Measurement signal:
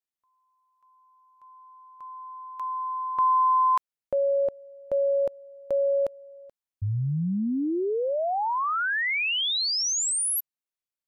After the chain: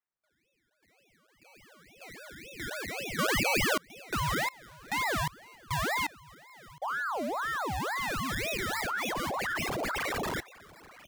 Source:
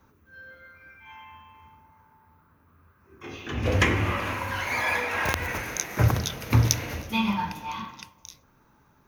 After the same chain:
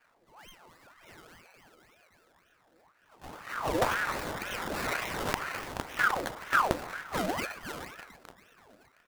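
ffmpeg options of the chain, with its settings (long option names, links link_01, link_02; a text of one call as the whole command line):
ffmpeg -i in.wav -af "aecho=1:1:714|1428|2142:0.0891|0.033|0.0122,acrusher=samples=20:mix=1:aa=0.000001:lfo=1:lforange=12:lforate=3.5,aeval=exprs='val(0)*sin(2*PI*1000*n/s+1000*0.6/2*sin(2*PI*2*n/s))':channel_layout=same,volume=-3.5dB" out.wav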